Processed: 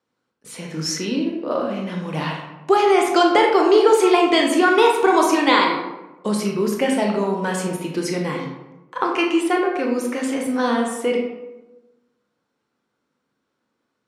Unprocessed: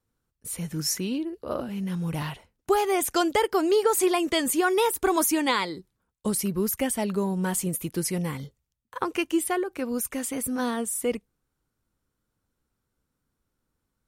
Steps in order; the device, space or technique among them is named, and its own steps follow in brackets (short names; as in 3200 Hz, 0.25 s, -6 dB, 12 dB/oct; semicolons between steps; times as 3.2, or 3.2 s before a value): supermarket ceiling speaker (BPF 270–5000 Hz; reverb RT60 1.1 s, pre-delay 19 ms, DRR 0.5 dB); gain +6.5 dB